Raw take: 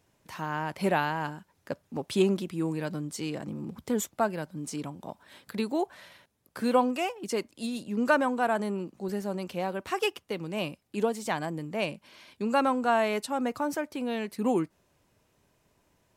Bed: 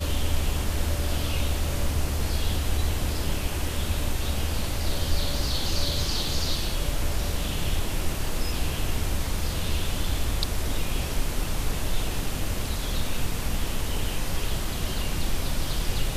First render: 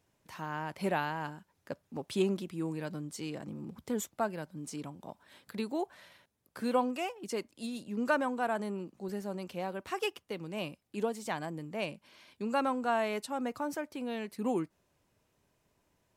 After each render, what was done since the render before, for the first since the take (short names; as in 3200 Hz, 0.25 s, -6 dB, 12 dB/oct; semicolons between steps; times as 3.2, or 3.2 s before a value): gain -5.5 dB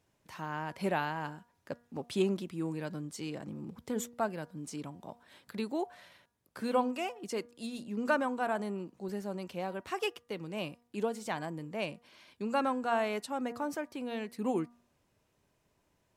high shelf 11000 Hz -4 dB; de-hum 238.7 Hz, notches 8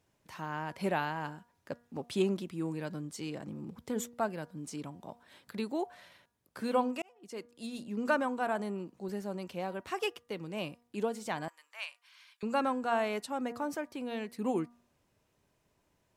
7.02–7.76 fade in; 11.48–12.43 HPF 1100 Hz 24 dB/oct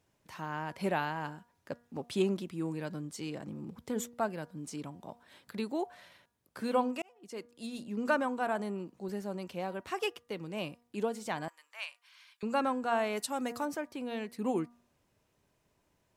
13.16–13.64 high shelf 4700 Hz -> 3000 Hz +11.5 dB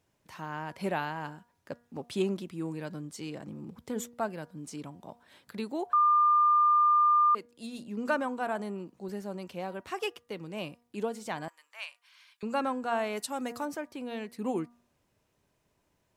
5.93–7.35 bleep 1200 Hz -19.5 dBFS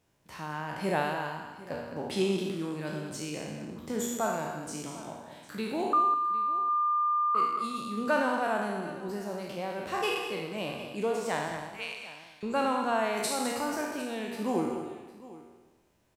spectral trails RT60 1.13 s; on a send: tapped delay 72/208/755 ms -10.5/-10/-18 dB